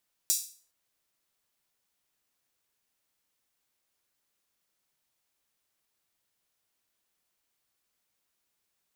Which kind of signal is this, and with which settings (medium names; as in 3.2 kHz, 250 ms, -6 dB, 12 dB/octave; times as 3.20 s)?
open hi-hat length 0.41 s, high-pass 5.9 kHz, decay 0.42 s